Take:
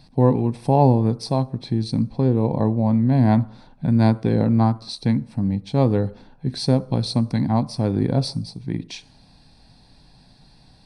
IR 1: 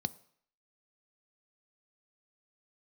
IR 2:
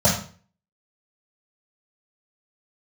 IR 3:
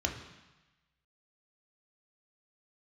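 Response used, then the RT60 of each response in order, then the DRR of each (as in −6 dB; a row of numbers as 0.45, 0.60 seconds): 1; 0.60, 0.45, 1.1 seconds; 15.0, −14.0, 2.0 decibels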